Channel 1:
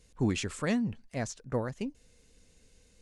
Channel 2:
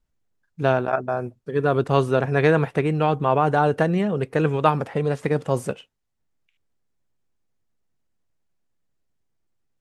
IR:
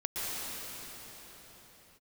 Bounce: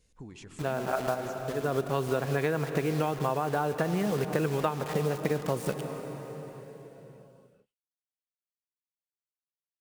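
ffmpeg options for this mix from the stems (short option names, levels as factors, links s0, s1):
-filter_complex "[0:a]acompressor=threshold=0.0126:ratio=4,volume=0.376,asplit=3[s0][s1][s2];[s1]volume=0.335[s3];[1:a]highpass=f=79:p=1,acrusher=bits=5:mix=0:aa=0.000001,volume=0.891,asplit=2[s4][s5];[s5]volume=0.126[s6];[s2]apad=whole_len=432455[s7];[s4][s7]sidechaincompress=threshold=0.00178:ratio=8:attack=5.3:release=186[s8];[2:a]atrim=start_sample=2205[s9];[s3][s6]amix=inputs=2:normalize=0[s10];[s10][s9]afir=irnorm=-1:irlink=0[s11];[s0][s8][s11]amix=inputs=3:normalize=0,acompressor=threshold=0.0631:ratio=10"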